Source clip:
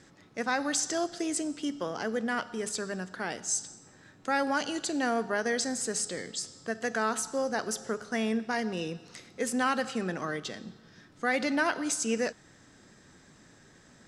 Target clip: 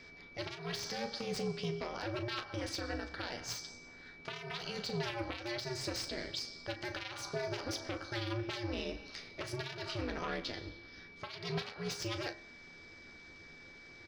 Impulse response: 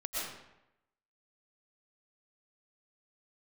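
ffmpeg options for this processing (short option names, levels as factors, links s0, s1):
-filter_complex "[0:a]aeval=exprs='0.2*(cos(1*acos(clip(val(0)/0.2,-1,1)))-cos(1*PI/2))+0.0891*(cos(3*acos(clip(val(0)/0.2,-1,1)))-cos(3*PI/2))+0.00447*(cos(6*acos(clip(val(0)/0.2,-1,1)))-cos(6*PI/2))':c=same,highshelf=f=6100:t=q:w=3:g=-9,acompressor=threshold=0.01:ratio=6,alimiter=level_in=4.22:limit=0.0631:level=0:latency=1:release=128,volume=0.237,aeval=exprs='val(0)*sin(2*PI*120*n/s)':c=same,bandreject=f=68.51:t=h:w=4,bandreject=f=137.02:t=h:w=4,bandreject=f=205.53:t=h:w=4,bandreject=f=274.04:t=h:w=4,bandreject=f=342.55:t=h:w=4,bandreject=f=411.06:t=h:w=4,bandreject=f=479.57:t=h:w=4,bandreject=f=548.08:t=h:w=4,bandreject=f=616.59:t=h:w=4,bandreject=f=685.1:t=h:w=4,bandreject=f=753.61:t=h:w=4,bandreject=f=822.12:t=h:w=4,bandreject=f=890.63:t=h:w=4,bandreject=f=959.14:t=h:w=4,bandreject=f=1027.65:t=h:w=4,bandreject=f=1096.16:t=h:w=4,bandreject=f=1164.67:t=h:w=4,bandreject=f=1233.18:t=h:w=4,bandreject=f=1301.69:t=h:w=4,bandreject=f=1370.2:t=h:w=4,bandreject=f=1438.71:t=h:w=4,bandreject=f=1507.22:t=h:w=4,bandreject=f=1575.73:t=h:w=4,bandreject=f=1644.24:t=h:w=4,bandreject=f=1712.75:t=h:w=4,bandreject=f=1781.26:t=h:w=4,bandreject=f=1849.77:t=h:w=4,bandreject=f=1918.28:t=h:w=4,bandreject=f=1986.79:t=h:w=4,aeval=exprs='val(0)+0.000631*sin(2*PI*2300*n/s)':c=same,asplit=2[s0][s1];[s1]aecho=0:1:12|37:0.299|0.266[s2];[s0][s2]amix=inputs=2:normalize=0,volume=3.35"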